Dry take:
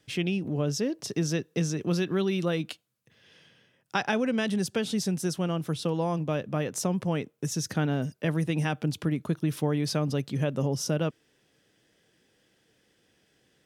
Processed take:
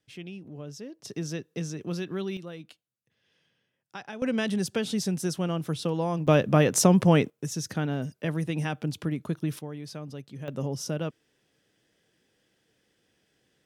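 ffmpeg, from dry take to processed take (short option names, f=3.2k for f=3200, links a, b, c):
-af "asetnsamples=n=441:p=0,asendcmd='1.05 volume volume -5.5dB;2.37 volume volume -13dB;4.22 volume volume 0dB;6.27 volume volume 9dB;7.3 volume volume -2dB;9.59 volume volume -11.5dB;10.48 volume volume -3.5dB',volume=-12.5dB"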